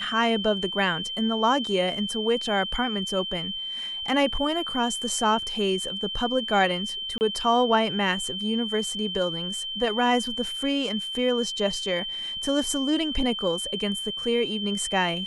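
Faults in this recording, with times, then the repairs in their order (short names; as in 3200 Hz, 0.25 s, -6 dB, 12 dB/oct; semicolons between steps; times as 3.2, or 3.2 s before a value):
tone 3100 Hz -30 dBFS
7.18–7.21 gap 29 ms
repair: notch 3100 Hz, Q 30; interpolate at 7.18, 29 ms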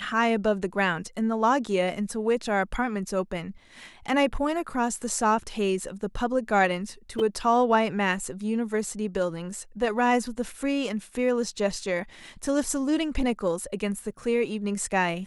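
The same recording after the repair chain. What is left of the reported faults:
none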